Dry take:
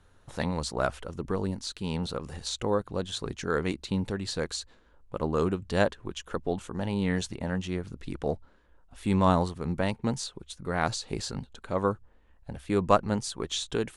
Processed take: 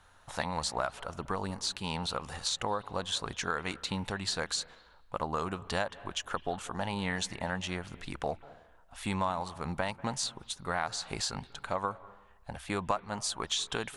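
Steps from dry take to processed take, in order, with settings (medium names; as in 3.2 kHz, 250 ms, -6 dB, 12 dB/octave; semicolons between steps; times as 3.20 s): resonant low shelf 560 Hz -9 dB, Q 1.5; compression 6:1, threshold -33 dBFS, peak gain reduction 16.5 dB; on a send: reverberation RT60 0.90 s, pre-delay 190 ms, DRR 18.5 dB; on the sum: trim +4.5 dB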